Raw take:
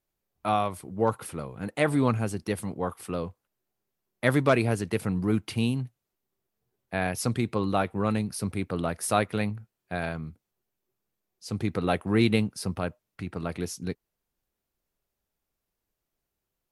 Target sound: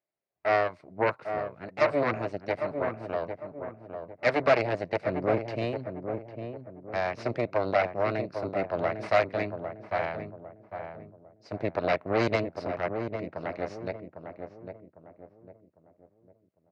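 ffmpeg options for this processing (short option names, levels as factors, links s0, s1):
-filter_complex "[0:a]aeval=exprs='0.447*(cos(1*acos(clip(val(0)/0.447,-1,1)))-cos(1*PI/2))+0.158*(cos(8*acos(clip(val(0)/0.447,-1,1)))-cos(8*PI/2))':c=same,highpass=150,equalizer=f=210:t=q:w=4:g=-5,equalizer=f=630:t=q:w=4:g=10,equalizer=f=2100:t=q:w=4:g=5,equalizer=f=3300:t=q:w=4:g=-10,lowpass=f=4500:w=0.5412,lowpass=f=4500:w=1.3066,asplit=2[s0][s1];[s1]adelay=802,lowpass=f=990:p=1,volume=0.501,asplit=2[s2][s3];[s3]adelay=802,lowpass=f=990:p=1,volume=0.41,asplit=2[s4][s5];[s5]adelay=802,lowpass=f=990:p=1,volume=0.41,asplit=2[s6][s7];[s7]adelay=802,lowpass=f=990:p=1,volume=0.41,asplit=2[s8][s9];[s9]adelay=802,lowpass=f=990:p=1,volume=0.41[s10];[s0][s2][s4][s6][s8][s10]amix=inputs=6:normalize=0,volume=0.447"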